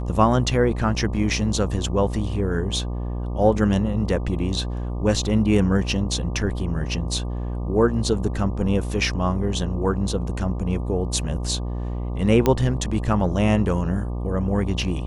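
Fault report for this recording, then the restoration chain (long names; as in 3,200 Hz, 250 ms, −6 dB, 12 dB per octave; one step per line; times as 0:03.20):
mains buzz 60 Hz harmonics 20 −27 dBFS
0:12.46: click −6 dBFS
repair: click removal
hum removal 60 Hz, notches 20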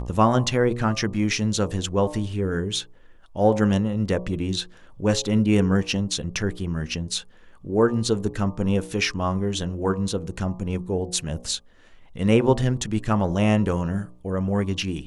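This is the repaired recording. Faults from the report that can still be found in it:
none of them is left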